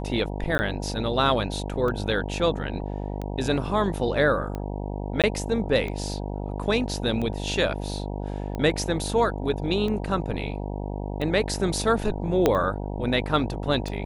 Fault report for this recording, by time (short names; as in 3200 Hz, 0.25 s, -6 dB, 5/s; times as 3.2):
buzz 50 Hz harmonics 19 -31 dBFS
tick 45 rpm -20 dBFS
0.58–0.59 gap 10 ms
5.22–5.24 gap 17 ms
12.46 pop -6 dBFS